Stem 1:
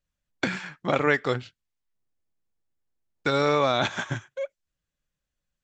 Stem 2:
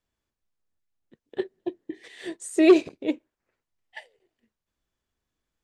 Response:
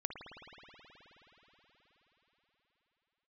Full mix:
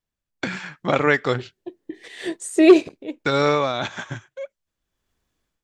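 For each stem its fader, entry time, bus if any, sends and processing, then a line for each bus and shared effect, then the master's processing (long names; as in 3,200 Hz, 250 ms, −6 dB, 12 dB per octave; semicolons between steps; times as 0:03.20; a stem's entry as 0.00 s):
0:03.47 −6.5 dB → 0:03.73 −13.5 dB, 0.00 s, no send, no processing
−4.0 dB, 0.00 s, no send, automatic ducking −16 dB, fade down 0.40 s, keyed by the first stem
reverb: not used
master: automatic gain control gain up to 12 dB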